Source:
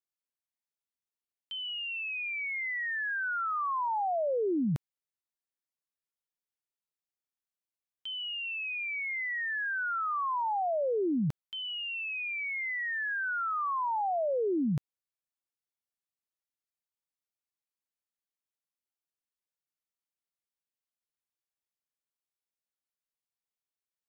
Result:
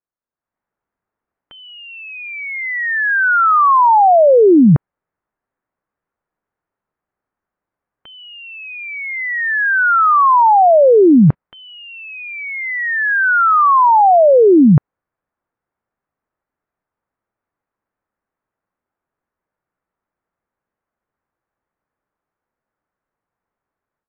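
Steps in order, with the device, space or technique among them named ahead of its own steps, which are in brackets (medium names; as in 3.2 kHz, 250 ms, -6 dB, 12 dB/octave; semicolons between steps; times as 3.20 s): action camera in a waterproof case (low-pass 1.6 kHz 24 dB/octave; level rider gain up to 14 dB; trim +7 dB; AAC 48 kbps 32 kHz)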